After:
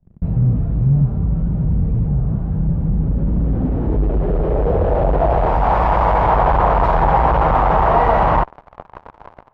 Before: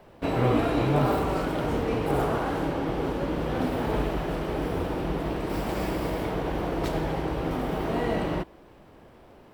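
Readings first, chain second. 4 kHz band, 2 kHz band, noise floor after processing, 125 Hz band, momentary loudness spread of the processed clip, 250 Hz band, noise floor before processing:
no reading, +7.0 dB, -48 dBFS, +13.5 dB, 5 LU, +5.0 dB, -52 dBFS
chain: amplifier tone stack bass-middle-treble 10-0-10; in parallel at -5 dB: fuzz box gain 60 dB, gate -56 dBFS; on the sum: low-pass sweep 180 Hz -> 930 Hz, 2.91–5.82 s; trim +4 dB

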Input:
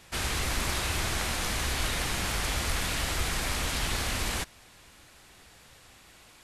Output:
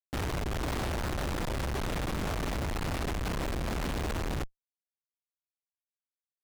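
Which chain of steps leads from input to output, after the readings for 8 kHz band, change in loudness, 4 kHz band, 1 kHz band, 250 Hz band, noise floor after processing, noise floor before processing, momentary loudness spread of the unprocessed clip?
-12.5 dB, -4.5 dB, -10.5 dB, -2.5 dB, +3.0 dB, under -85 dBFS, -55 dBFS, 1 LU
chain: Schmitt trigger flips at -27.5 dBFS; loudspeaker Doppler distortion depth 0.18 ms

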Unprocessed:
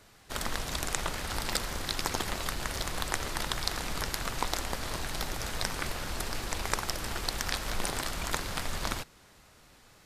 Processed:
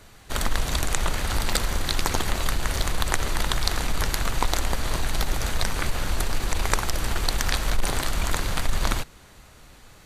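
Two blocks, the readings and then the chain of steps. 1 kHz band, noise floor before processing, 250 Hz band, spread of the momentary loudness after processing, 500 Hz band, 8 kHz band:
+5.5 dB, -58 dBFS, +6.5 dB, 3 LU, +6.0 dB, +5.5 dB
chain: bass shelf 81 Hz +9 dB; band-stop 5.2 kHz, Q 12; transformer saturation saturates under 77 Hz; trim +6.5 dB

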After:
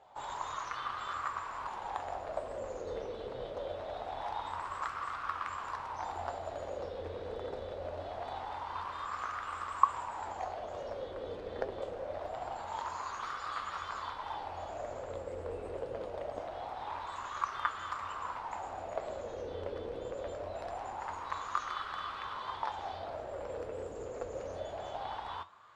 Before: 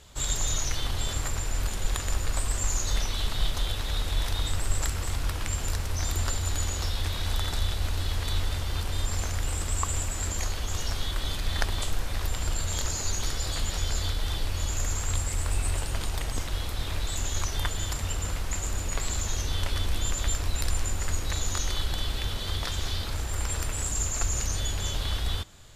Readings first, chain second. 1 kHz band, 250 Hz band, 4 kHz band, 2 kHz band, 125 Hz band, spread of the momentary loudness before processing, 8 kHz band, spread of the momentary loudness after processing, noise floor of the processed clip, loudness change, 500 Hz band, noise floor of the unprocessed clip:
+4.0 dB, -10.5 dB, -18.0 dB, -7.5 dB, -22.5 dB, 3 LU, -27.5 dB, 4 LU, -44 dBFS, -9.0 dB, +2.5 dB, -33 dBFS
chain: wah-wah 0.24 Hz 480–1200 Hz, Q 5.9; treble shelf 10 kHz -12 dB; flange 1.2 Hz, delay 7.3 ms, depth 4.6 ms, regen +73%; trim +15 dB

